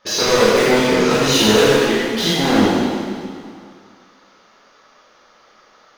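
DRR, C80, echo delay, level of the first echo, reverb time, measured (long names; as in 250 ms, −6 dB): −10.0 dB, −2.0 dB, no echo audible, no echo audible, 2.2 s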